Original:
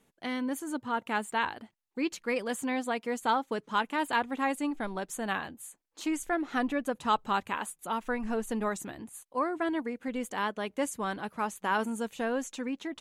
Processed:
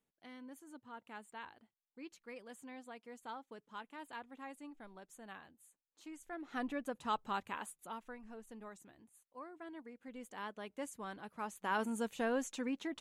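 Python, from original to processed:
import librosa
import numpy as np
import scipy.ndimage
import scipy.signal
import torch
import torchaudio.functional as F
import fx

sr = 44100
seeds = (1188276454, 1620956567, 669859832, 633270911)

y = fx.gain(x, sr, db=fx.line((6.19, -19.5), (6.62, -9.5), (7.75, -9.5), (8.22, -20.0), (9.56, -20.0), (10.56, -12.5), (11.25, -12.5), (11.98, -4.0)))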